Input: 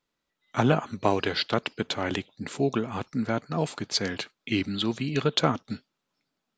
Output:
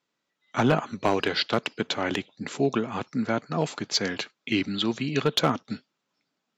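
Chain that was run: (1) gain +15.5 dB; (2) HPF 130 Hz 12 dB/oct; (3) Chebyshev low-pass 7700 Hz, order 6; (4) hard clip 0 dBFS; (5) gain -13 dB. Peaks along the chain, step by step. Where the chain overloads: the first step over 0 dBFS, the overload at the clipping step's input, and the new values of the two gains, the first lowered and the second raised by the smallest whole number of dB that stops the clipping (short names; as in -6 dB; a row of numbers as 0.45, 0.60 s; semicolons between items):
+9.5, +8.0, +7.5, 0.0, -13.0 dBFS; step 1, 7.5 dB; step 1 +7.5 dB, step 5 -5 dB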